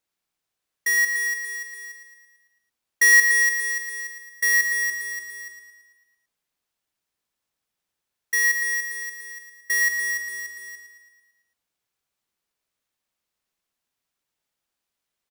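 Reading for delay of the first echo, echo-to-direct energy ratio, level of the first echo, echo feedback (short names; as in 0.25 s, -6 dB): 0.111 s, -6.0 dB, -7.5 dB, 56%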